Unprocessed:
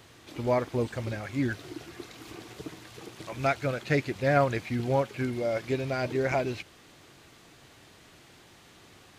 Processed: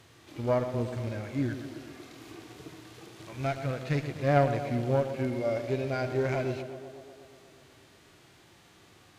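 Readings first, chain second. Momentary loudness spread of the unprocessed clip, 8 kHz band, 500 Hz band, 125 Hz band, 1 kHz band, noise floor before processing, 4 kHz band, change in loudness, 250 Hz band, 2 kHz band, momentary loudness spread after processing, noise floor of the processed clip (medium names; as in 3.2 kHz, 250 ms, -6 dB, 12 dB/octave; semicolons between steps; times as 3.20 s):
18 LU, no reading, -1.0 dB, +1.0 dB, -2.0 dB, -55 dBFS, -3.5 dB, -1.0 dB, -1.0 dB, -5.0 dB, 20 LU, -58 dBFS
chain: Chebyshev shaper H 2 -8 dB, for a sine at -10.5 dBFS; harmonic-percussive split percussive -11 dB; tape echo 122 ms, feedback 78%, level -9 dB, low-pass 2 kHz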